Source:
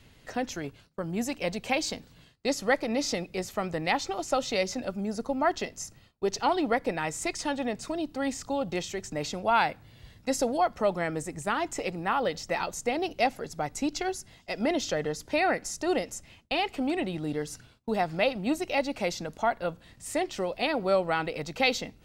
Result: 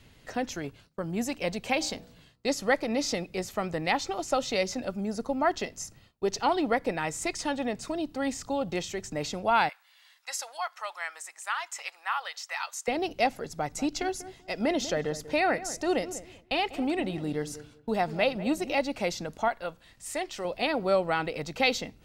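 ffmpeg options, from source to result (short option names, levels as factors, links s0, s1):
-filter_complex "[0:a]asplit=3[s0][s1][s2];[s0]afade=t=out:st=1.8:d=0.02[s3];[s1]bandreject=f=60.71:t=h:w=4,bandreject=f=121.42:t=h:w=4,bandreject=f=182.13:t=h:w=4,bandreject=f=242.84:t=h:w=4,bandreject=f=303.55:t=h:w=4,bandreject=f=364.26:t=h:w=4,bandreject=f=424.97:t=h:w=4,bandreject=f=485.68:t=h:w=4,bandreject=f=546.39:t=h:w=4,bandreject=f=607.1:t=h:w=4,bandreject=f=667.81:t=h:w=4,bandreject=f=728.52:t=h:w=4,bandreject=f=789.23:t=h:w=4,bandreject=f=849.94:t=h:w=4,bandreject=f=910.65:t=h:w=4,bandreject=f=971.36:t=h:w=4,bandreject=f=1032.07:t=h:w=4,bandreject=f=1092.78:t=h:w=4,bandreject=f=1153.49:t=h:w=4,bandreject=f=1214.2:t=h:w=4,bandreject=f=1274.91:t=h:w=4,bandreject=f=1335.62:t=h:w=4,afade=t=in:st=1.8:d=0.02,afade=t=out:st=2.47:d=0.02[s4];[s2]afade=t=in:st=2.47:d=0.02[s5];[s3][s4][s5]amix=inputs=3:normalize=0,asettb=1/sr,asplit=3[s6][s7][s8];[s6]atrim=end=9.694[s9];[s7]atrim=start=9.69:end=12.88,asetpts=PTS-STARTPTS,afade=t=in:d=0.004:c=qsin,afade=t=out:st=3.186:d=0.004:c=qsin,highpass=f=980:w=0.5412,highpass=f=980:w=1.3066[s10];[s8]atrim=start=12.876[s11];[s9][s10]acrossfade=d=0.004:c1=hsin:c2=qsin[s12];[s12][s11]acrossfade=d=0.004:c1=qsin:c2=hsin,asettb=1/sr,asplit=3[s13][s14][s15];[s13]atrim=end=13.484[s16];[s14]atrim=start=13.48:end=18.77,asetpts=PTS-STARTPTS,afade=t=in:d=0.004:c=qsin,afade=t=out:st=5.286:d=0.004:c=qsin,asplit=2[s17][s18];[s18]adelay=193,lowpass=f=1100:p=1,volume=0.224,asplit=2[s19][s20];[s20]adelay=193,lowpass=f=1100:p=1,volume=0.22,asplit=2[s21][s22];[s22]adelay=193,lowpass=f=1100:p=1,volume=0.22[s23];[s17][s19][s21][s23]amix=inputs=4:normalize=0,atrim=end_sample=233289[s24];[s15]atrim=start=18.766[s25];[s16][s24]acrossfade=d=0.004:c1=hsin:c2=qsin[s26];[s26][s25]acrossfade=d=0.004:c1=qsin:c2=hsin,asettb=1/sr,asplit=3[s27][s28][s29];[s27]atrim=end=19.484[s30];[s28]atrim=start=19.48:end=20.45,asetpts=PTS-STARTPTS,afade=t=in:d=0.004:c=qsin,afade=t=out:st=0.966:d=0.004:c=qsin,equalizer=f=150:w=0.31:g=-9[s31];[s29]atrim=start=20.446[s32];[s30][s31]acrossfade=d=0.004:c1=hsin:c2=qsin[s33];[s33][s32]acrossfade=d=0.004:c1=qsin:c2=hsin"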